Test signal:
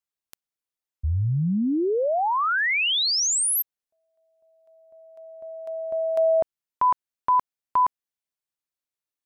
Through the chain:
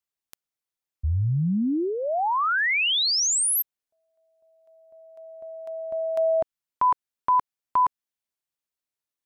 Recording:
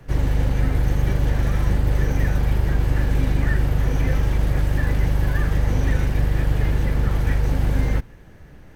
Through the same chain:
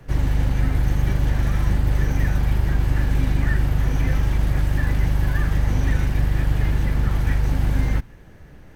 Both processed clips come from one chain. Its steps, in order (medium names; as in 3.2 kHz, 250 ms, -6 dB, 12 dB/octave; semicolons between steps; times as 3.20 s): dynamic bell 480 Hz, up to -6 dB, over -44 dBFS, Q 2.2